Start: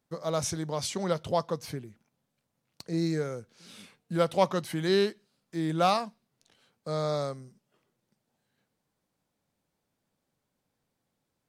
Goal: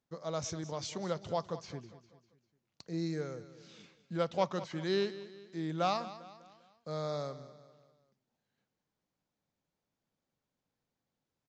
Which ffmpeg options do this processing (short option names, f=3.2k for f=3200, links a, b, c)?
-filter_complex "[0:a]asplit=2[a][b];[b]aecho=0:1:199|398|597|796:0.178|0.0818|0.0376|0.0173[c];[a][c]amix=inputs=2:normalize=0,aresample=16000,aresample=44100,volume=-7dB"